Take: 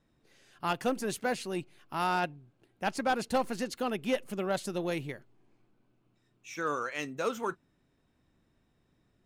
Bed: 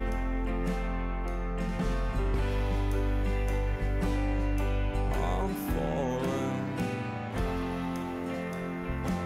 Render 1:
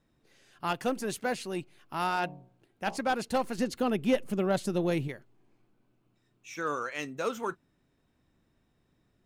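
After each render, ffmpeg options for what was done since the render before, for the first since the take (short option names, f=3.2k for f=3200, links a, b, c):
-filter_complex "[0:a]asettb=1/sr,asplit=3[a][b][c];[a]atrim=end=2.084[d];[b]atrim=start=2.08:end=2.97,asetpts=PTS-STARTPTS,afade=t=in:d=0.004:c=qsin,afade=t=out:st=0.886:d=0.004:c=qsin,bandreject=f=60.78:t=h:w=4,bandreject=f=121.56:t=h:w=4,bandreject=f=182.34:t=h:w=4,bandreject=f=243.12:t=h:w=4,bandreject=f=303.9:t=h:w=4,bandreject=f=364.68:t=h:w=4,bandreject=f=425.46:t=h:w=4,bandreject=f=486.24:t=h:w=4,bandreject=f=547.02:t=h:w=4,bandreject=f=607.8:t=h:w=4,bandreject=f=668.58:t=h:w=4,bandreject=f=729.36:t=h:w=4,bandreject=f=790.14:t=h:w=4,bandreject=f=850.92:t=h:w=4,bandreject=f=911.7:t=h:w=4,bandreject=f=972.48:t=h:w=4,bandreject=f=1.03326k:t=h:w=4,bandreject=f=1.09404k:t=h:w=4,bandreject=f=1.15482k:t=h:w=4[e];[c]atrim=start=2.966[f];[d][e]acrossfade=d=0.004:c1=hsin:c2=qsin[g];[g][f]acrossfade=d=0.004:c1=qsin:c2=hsin,asettb=1/sr,asplit=3[h][i][j];[h]atrim=end=3.584[k];[i]atrim=start=3.58:end=5.08,asetpts=PTS-STARTPTS,afade=t=in:d=0.004:c=qsin,afade=t=out:st=1.496:d=0.004:c=qsin,lowshelf=f=440:g=8[l];[j]atrim=start=5.076[m];[k][l]acrossfade=d=0.004:c1=hsin:c2=qsin[n];[n][m]acrossfade=d=0.004:c1=qsin:c2=hsin"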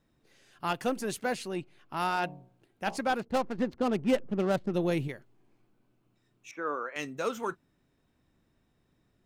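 -filter_complex "[0:a]asettb=1/sr,asplit=3[a][b][c];[a]atrim=end=1.484[d];[b]atrim=start=1.48:end=1.97,asetpts=PTS-STARTPTS,afade=t=in:d=0.004:c=qsin,afade=t=out:st=0.486:d=0.004:c=qsin,highshelf=f=6.8k:g=-11[e];[c]atrim=start=1.966[f];[d][e]acrossfade=d=0.004:c1=hsin:c2=qsin[g];[g][f]acrossfade=d=0.004:c1=qsin:c2=hsin,asettb=1/sr,asplit=3[h][i][j];[h]atrim=end=3.204[k];[i]atrim=start=3.2:end=4.74,asetpts=PTS-STARTPTS,afade=t=in:d=0.004:c=qsin,afade=t=out:st=1.536:d=0.004:c=qsin,adynamicsmooth=sensitivity=7.5:basefreq=510[l];[j]atrim=start=4.736[m];[k][l]acrossfade=d=0.004:c1=hsin:c2=qsin[n];[n][m]acrossfade=d=0.004:c1=qsin:c2=hsin,asettb=1/sr,asplit=3[o][p][q];[o]atrim=end=6.514[r];[p]atrim=start=6.51:end=6.96,asetpts=PTS-STARTPTS,afade=t=in:d=0.004:c=qsin,afade=t=out:st=0.446:d=0.004:c=qsin,acrossover=split=210 2000:gain=0.0794 1 0.0708[s][t][u];[s][t][u]amix=inputs=3:normalize=0[v];[q]atrim=start=6.956[w];[r][v]acrossfade=d=0.004:c1=hsin:c2=qsin[x];[x][w]acrossfade=d=0.004:c1=qsin:c2=hsin"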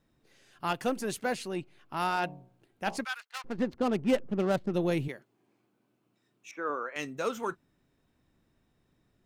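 -filter_complex "[0:a]asplit=3[a][b][c];[a]afade=t=out:st=3.03:d=0.02[d];[b]highpass=f=1.3k:w=0.5412,highpass=f=1.3k:w=1.3066,afade=t=in:st=3.03:d=0.02,afade=t=out:st=3.44:d=0.02[e];[c]afade=t=in:st=3.44:d=0.02[f];[d][e][f]amix=inputs=3:normalize=0,asettb=1/sr,asplit=3[g][h][i];[g]atrim=end=5.084[j];[h]atrim=start=5.08:end=6.7,asetpts=PTS-STARTPTS,afade=t=in:d=0.004:c=qsin,afade=t=out:st=1.616:d=0.004:c=qsin,highpass=170[k];[i]atrim=start=6.696[l];[j][k]acrossfade=d=0.004:c1=hsin:c2=qsin[m];[m][l]acrossfade=d=0.004:c1=qsin:c2=hsin"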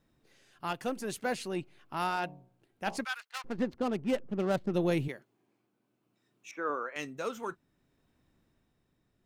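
-af "tremolo=f=0.61:d=0.39"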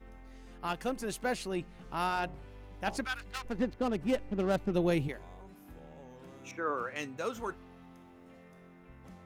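-filter_complex "[1:a]volume=-21dB[a];[0:a][a]amix=inputs=2:normalize=0"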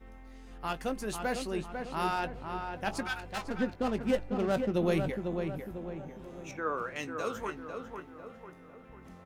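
-filter_complex "[0:a]asplit=2[a][b];[b]adelay=19,volume=-12dB[c];[a][c]amix=inputs=2:normalize=0,asplit=2[d][e];[e]adelay=498,lowpass=f=2.1k:p=1,volume=-5.5dB,asplit=2[f][g];[g]adelay=498,lowpass=f=2.1k:p=1,volume=0.48,asplit=2[h][i];[i]adelay=498,lowpass=f=2.1k:p=1,volume=0.48,asplit=2[j][k];[k]adelay=498,lowpass=f=2.1k:p=1,volume=0.48,asplit=2[l][m];[m]adelay=498,lowpass=f=2.1k:p=1,volume=0.48,asplit=2[n][o];[o]adelay=498,lowpass=f=2.1k:p=1,volume=0.48[p];[f][h][j][l][n][p]amix=inputs=6:normalize=0[q];[d][q]amix=inputs=2:normalize=0"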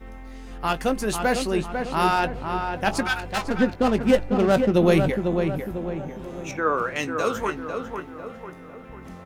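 -af "volume=10.5dB"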